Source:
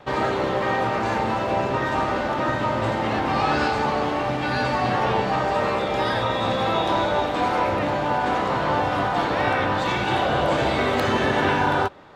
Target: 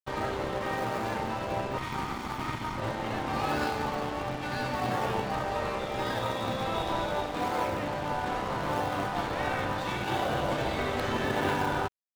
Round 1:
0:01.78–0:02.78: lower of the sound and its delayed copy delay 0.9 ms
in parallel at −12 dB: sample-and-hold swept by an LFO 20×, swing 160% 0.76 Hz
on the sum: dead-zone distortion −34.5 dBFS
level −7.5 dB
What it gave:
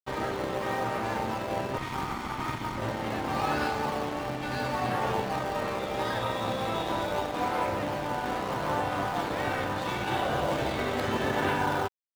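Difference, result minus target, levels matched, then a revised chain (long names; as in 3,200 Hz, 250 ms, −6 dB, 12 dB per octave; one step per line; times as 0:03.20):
sample-and-hold swept by an LFO: distortion −12 dB
0:01.78–0:02.78: lower of the sound and its delayed copy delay 0.9 ms
in parallel at −12 dB: sample-and-hold swept by an LFO 75×, swing 160% 0.76 Hz
on the sum: dead-zone distortion −34.5 dBFS
level −7.5 dB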